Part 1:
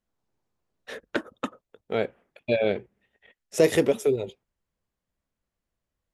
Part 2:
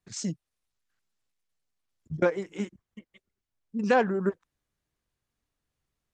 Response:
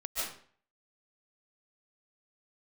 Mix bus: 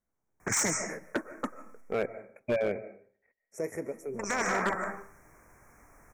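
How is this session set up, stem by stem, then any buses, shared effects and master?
2.54 s -2.5 dB -> 3.14 s -15 dB, 0.00 s, send -18 dB, dry
+0.5 dB, 0.40 s, muted 1.81–3.85, send -11.5 dB, EQ curve 130 Hz 0 dB, 1000 Hz +9 dB, 6200 Hz 0 dB; spectral compressor 4:1; auto duck -13 dB, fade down 1.95 s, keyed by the first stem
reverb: on, RT60 0.50 s, pre-delay 0.105 s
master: Chebyshev band-stop 2300–5600 Hz, order 4; overloaded stage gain 22.5 dB

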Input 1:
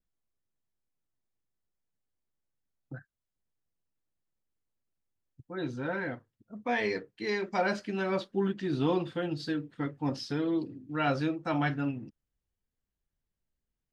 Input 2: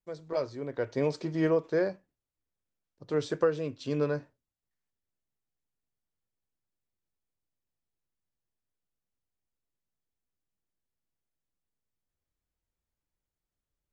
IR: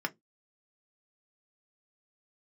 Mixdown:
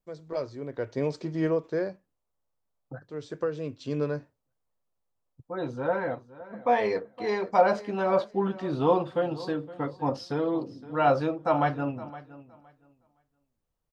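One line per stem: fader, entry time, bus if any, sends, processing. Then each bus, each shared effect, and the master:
-2.5 dB, 0.00 s, no send, echo send -17.5 dB, band shelf 760 Hz +11 dB
-2.0 dB, 0.00 s, no send, no echo send, auto duck -11 dB, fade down 1.25 s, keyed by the first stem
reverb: off
echo: feedback echo 0.515 s, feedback 19%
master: low shelf 420 Hz +3.5 dB

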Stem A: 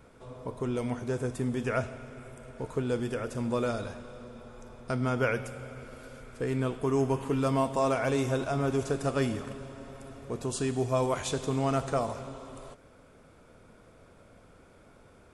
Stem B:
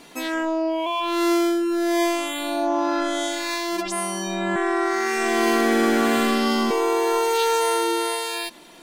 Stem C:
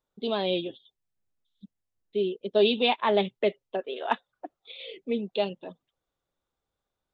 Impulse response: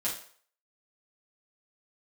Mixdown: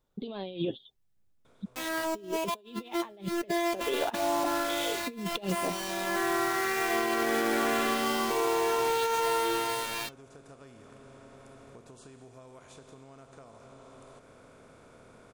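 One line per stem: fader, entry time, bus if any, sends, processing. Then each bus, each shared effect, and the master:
-16.5 dB, 1.45 s, no send, per-bin compression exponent 0.6; compressor 16:1, threshold -34 dBFS, peak gain reduction 15 dB; auto duck -11 dB, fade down 1.80 s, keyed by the third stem
-4.0 dB, 1.60 s, no send, tone controls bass -14 dB, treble -8 dB; bit-crush 5-bit; flange 0.49 Hz, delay 2.8 ms, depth 4.5 ms, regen -75%
+0.5 dB, 0.00 s, no send, low shelf 310 Hz +8.5 dB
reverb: off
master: negative-ratio compressor -30 dBFS, ratio -0.5

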